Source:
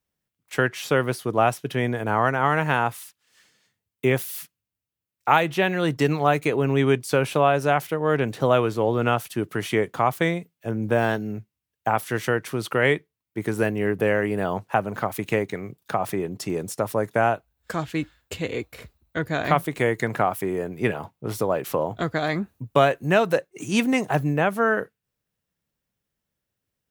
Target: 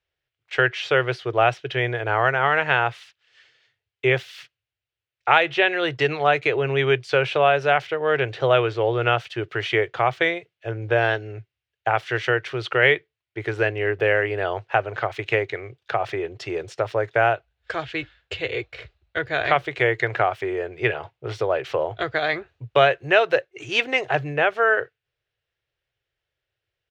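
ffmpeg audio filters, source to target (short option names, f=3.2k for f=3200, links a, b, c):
-af "firequalizer=gain_entry='entry(130,0);entry(190,-26);entry(360,1);entry(710,2);entry(1000,-3);entry(1500,5);entry(3000,7);entry(11000,-29)':delay=0.05:min_phase=1"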